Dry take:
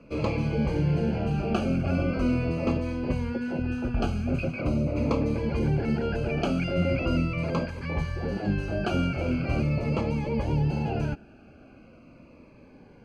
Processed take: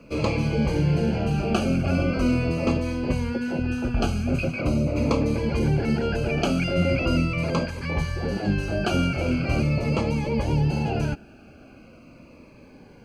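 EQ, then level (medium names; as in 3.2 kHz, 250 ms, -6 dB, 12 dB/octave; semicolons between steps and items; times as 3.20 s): treble shelf 4.6 kHz +11 dB; +3.0 dB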